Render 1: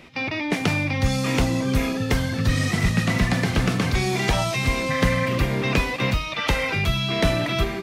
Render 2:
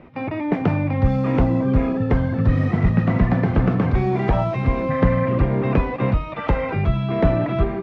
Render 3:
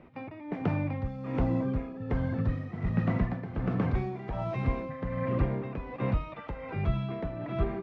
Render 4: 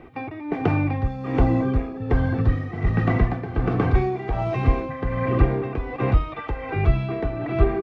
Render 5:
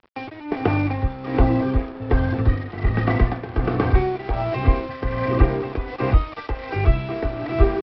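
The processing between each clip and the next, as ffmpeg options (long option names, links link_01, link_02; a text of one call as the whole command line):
ffmpeg -i in.wav -af "lowpass=1100,volume=4dB" out.wav
ffmpeg -i in.wav -af "tremolo=f=1.3:d=0.71,volume=-8.5dB" out.wav
ffmpeg -i in.wav -af "aecho=1:1:2.6:0.55,volume=8.5dB" out.wav
ffmpeg -i in.wav -af "aresample=11025,aeval=exprs='sgn(val(0))*max(abs(val(0))-0.0112,0)':channel_layout=same,aresample=44100,equalizer=frequency=160:width_type=o:width=0.5:gain=-9.5,volume=3dB" out.wav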